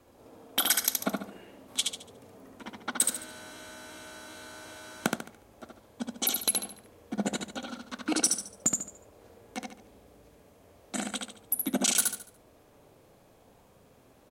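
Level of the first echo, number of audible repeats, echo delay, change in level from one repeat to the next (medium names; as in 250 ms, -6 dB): -3.5 dB, 4, 72 ms, -9.0 dB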